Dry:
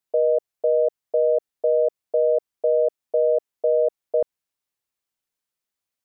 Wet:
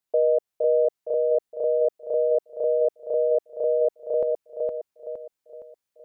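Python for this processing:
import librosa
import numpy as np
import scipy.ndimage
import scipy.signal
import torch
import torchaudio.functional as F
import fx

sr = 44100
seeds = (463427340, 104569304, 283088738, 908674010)

y = fx.echo_feedback(x, sr, ms=464, feedback_pct=42, wet_db=-3.5)
y = y * 10.0 ** (-1.0 / 20.0)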